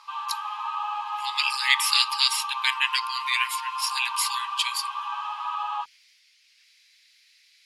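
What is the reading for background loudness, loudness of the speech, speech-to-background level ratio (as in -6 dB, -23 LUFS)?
-31.0 LUFS, -24.5 LUFS, 6.5 dB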